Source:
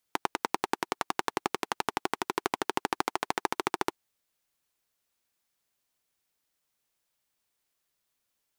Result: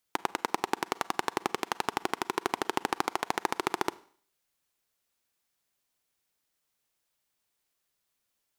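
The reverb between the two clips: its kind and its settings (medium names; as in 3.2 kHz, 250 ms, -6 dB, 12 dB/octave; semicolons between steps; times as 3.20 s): Schroeder reverb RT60 0.53 s, combs from 33 ms, DRR 19 dB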